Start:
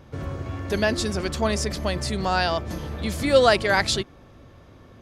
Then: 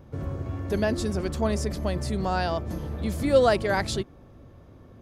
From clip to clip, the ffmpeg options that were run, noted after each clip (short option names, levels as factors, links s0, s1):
-af "equalizer=f=3500:w=0.3:g=-9.5"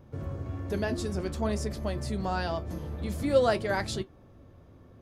-af "flanger=delay=8.4:depth=3.3:regen=-63:speed=0.53:shape=sinusoidal"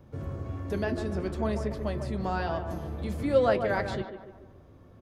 -filter_complex "[0:a]acrossover=split=200|3400[s0][s1][s2];[s1]asplit=2[s3][s4];[s4]adelay=145,lowpass=f=1900:p=1,volume=0.447,asplit=2[s5][s6];[s6]adelay=145,lowpass=f=1900:p=1,volume=0.52,asplit=2[s7][s8];[s8]adelay=145,lowpass=f=1900:p=1,volume=0.52,asplit=2[s9][s10];[s10]adelay=145,lowpass=f=1900:p=1,volume=0.52,asplit=2[s11][s12];[s12]adelay=145,lowpass=f=1900:p=1,volume=0.52,asplit=2[s13][s14];[s14]adelay=145,lowpass=f=1900:p=1,volume=0.52[s15];[s3][s5][s7][s9][s11][s13][s15]amix=inputs=7:normalize=0[s16];[s2]acompressor=threshold=0.00178:ratio=5[s17];[s0][s16][s17]amix=inputs=3:normalize=0"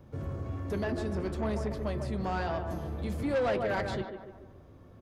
-af "asoftclip=type=tanh:threshold=0.0596"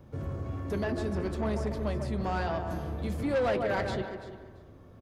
-af "aecho=1:1:338|676:0.188|0.0301,volume=1.12"